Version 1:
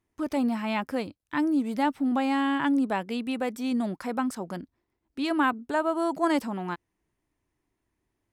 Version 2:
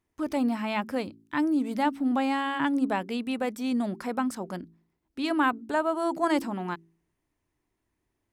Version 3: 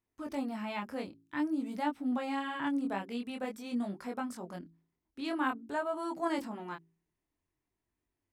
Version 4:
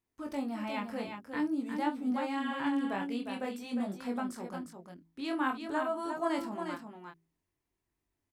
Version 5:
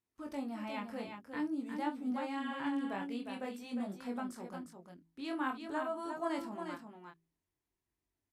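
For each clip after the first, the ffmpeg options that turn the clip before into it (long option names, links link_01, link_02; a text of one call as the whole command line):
ffmpeg -i in.wav -af "bandreject=frequency=55.22:width_type=h:width=4,bandreject=frequency=110.44:width_type=h:width=4,bandreject=frequency=165.66:width_type=h:width=4,bandreject=frequency=220.88:width_type=h:width=4,bandreject=frequency=276.1:width_type=h:width=4,bandreject=frequency=331.32:width_type=h:width=4,bandreject=frequency=386.54:width_type=h:width=4" out.wav
ffmpeg -i in.wav -af "flanger=delay=20:depth=5.6:speed=0.5,volume=-5dB" out.wav
ffmpeg -i in.wav -af "aecho=1:1:43|356:0.237|0.473" out.wav
ffmpeg -i in.wav -af "volume=-4.5dB" -ar 32000 -c:a libvorbis -b:a 96k out.ogg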